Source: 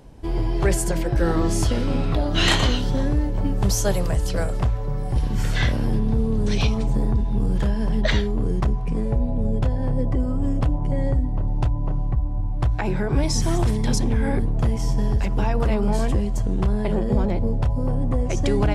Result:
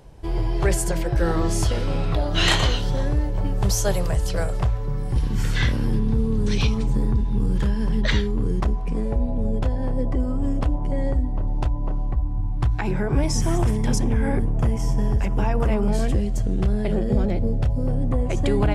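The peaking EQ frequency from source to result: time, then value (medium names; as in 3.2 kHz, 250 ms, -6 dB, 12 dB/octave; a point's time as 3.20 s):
peaking EQ -10.5 dB 0.42 oct
250 Hz
from 4.78 s 670 Hz
from 8.60 s 130 Hz
from 12.22 s 570 Hz
from 12.91 s 4.1 kHz
from 15.88 s 980 Hz
from 18.12 s 5.7 kHz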